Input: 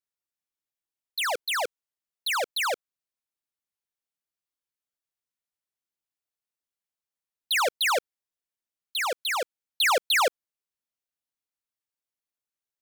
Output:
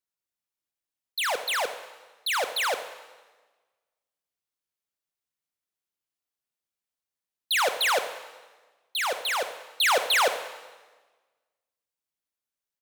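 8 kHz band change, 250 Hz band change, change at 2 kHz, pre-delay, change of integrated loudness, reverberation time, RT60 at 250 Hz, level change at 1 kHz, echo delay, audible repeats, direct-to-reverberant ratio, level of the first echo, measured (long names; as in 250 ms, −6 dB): +0.5 dB, +0.5 dB, +0.5 dB, 19 ms, 0.0 dB, 1.3 s, 1.4 s, +0.5 dB, 82 ms, 1, 8.5 dB, −14.5 dB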